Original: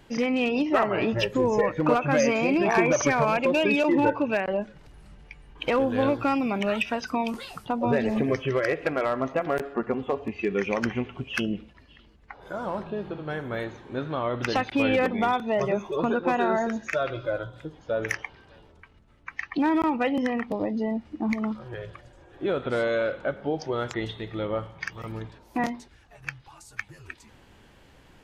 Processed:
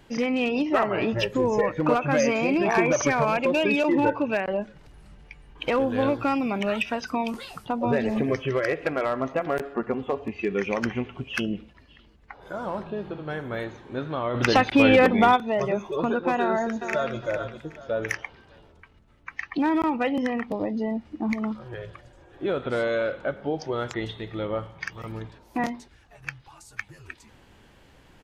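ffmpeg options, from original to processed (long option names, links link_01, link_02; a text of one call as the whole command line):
ffmpeg -i in.wav -filter_complex "[0:a]asplit=3[link_01][link_02][link_03];[link_01]afade=type=out:start_time=14.34:duration=0.02[link_04];[link_02]acontrast=69,afade=type=in:start_time=14.34:duration=0.02,afade=type=out:start_time=15.35:duration=0.02[link_05];[link_03]afade=type=in:start_time=15.35:duration=0.02[link_06];[link_04][link_05][link_06]amix=inputs=3:normalize=0,asplit=2[link_07][link_08];[link_08]afade=type=in:start_time=16.4:duration=0.01,afade=type=out:start_time=17.16:duration=0.01,aecho=0:1:410|820|1230|1640:0.375837|0.112751|0.0338254|0.0101476[link_09];[link_07][link_09]amix=inputs=2:normalize=0" out.wav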